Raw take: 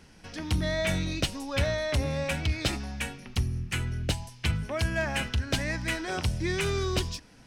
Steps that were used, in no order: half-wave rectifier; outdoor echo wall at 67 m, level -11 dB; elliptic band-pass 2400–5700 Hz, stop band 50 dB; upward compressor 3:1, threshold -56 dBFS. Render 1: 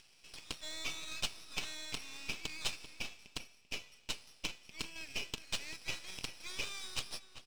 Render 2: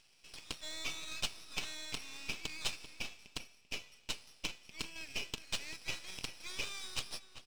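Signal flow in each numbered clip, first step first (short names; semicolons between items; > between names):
elliptic band-pass > upward compressor > half-wave rectifier > outdoor echo; upward compressor > elliptic band-pass > half-wave rectifier > outdoor echo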